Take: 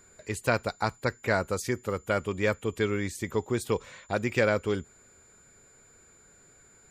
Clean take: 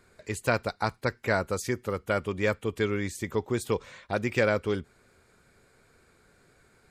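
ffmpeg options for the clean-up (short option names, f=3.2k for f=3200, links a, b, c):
-af "bandreject=f=7.1k:w=30"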